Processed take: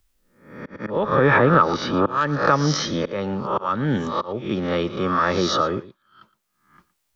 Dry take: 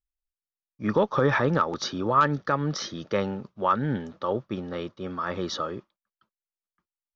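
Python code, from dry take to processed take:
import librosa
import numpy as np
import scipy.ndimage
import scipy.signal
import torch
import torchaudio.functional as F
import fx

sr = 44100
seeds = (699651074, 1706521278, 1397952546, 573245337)

y = fx.spec_swells(x, sr, rise_s=0.54)
y = fx.lowpass(y, sr, hz=2600.0, slope=12, at=(0.86, 2.07))
y = fx.auto_swell(y, sr, attack_ms=498.0)
y = y + 10.0 ** (-18.5 / 20.0) * np.pad(y, (int(115 * sr / 1000.0), 0))[:len(y)]
y = fx.band_squash(y, sr, depth_pct=40)
y = y * librosa.db_to_amplitude(8.0)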